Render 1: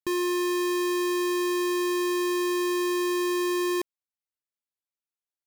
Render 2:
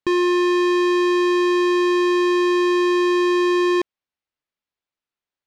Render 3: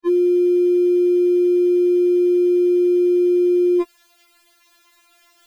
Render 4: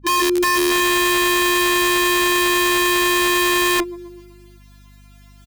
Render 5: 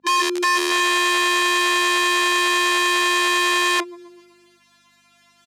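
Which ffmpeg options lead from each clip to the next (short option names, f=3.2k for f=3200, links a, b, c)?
-af "lowpass=3.9k,volume=8.5dB"
-af "lowshelf=f=230:g=-11.5,areverse,acompressor=mode=upward:threshold=-25dB:ratio=2.5,areverse,afftfilt=real='re*4*eq(mod(b,16),0)':imag='im*4*eq(mod(b,16),0)':win_size=2048:overlap=0.75"
-af "aecho=1:1:125|250|375|500|625|750:0.266|0.149|0.0834|0.0467|0.0262|0.0147,aeval=exprs='(mod(5.01*val(0)+1,2)-1)/5.01':c=same,aeval=exprs='val(0)+0.00562*(sin(2*PI*50*n/s)+sin(2*PI*2*50*n/s)/2+sin(2*PI*3*50*n/s)/3+sin(2*PI*4*50*n/s)/4+sin(2*PI*5*50*n/s)/5)':c=same"
-af "highpass=480,lowpass=8k"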